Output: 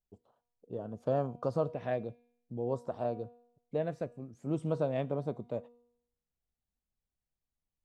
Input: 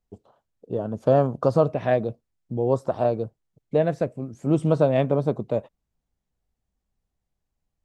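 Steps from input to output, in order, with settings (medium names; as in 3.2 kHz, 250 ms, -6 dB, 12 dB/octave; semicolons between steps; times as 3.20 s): feedback comb 240 Hz, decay 0.75 s, mix 50%; trim -6.5 dB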